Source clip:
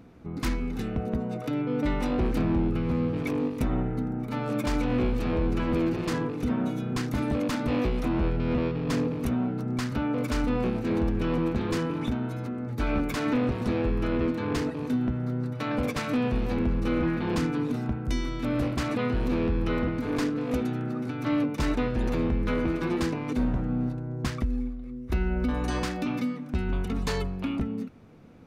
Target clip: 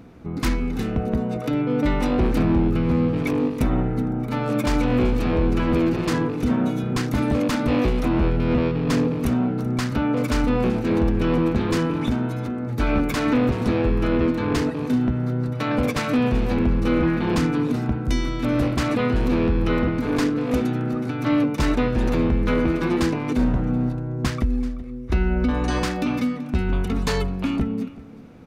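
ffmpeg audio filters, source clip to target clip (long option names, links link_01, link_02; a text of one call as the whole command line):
ffmpeg -i in.wav -filter_complex "[0:a]asettb=1/sr,asplit=3[link_01][link_02][link_03];[link_01]atrim=end=25.084[link_04];[link_02]atrim=start=25.08:end=25.77,asetpts=PTS-STARTPTS,afade=type=in:duration=0.004:curve=qsin,afade=type=out:start_time=0.686:duration=0.004:curve=qsin,lowpass=7900[link_05];[link_03]atrim=start=25.766[link_06];[link_04][link_05]acrossfade=duration=0.004:curve1=hsin:curve2=qsin[link_07];[link_07][link_06]acrossfade=duration=0.004:curve1=qsin:curve2=hsin,aecho=1:1:382:0.119,volume=6dB" out.wav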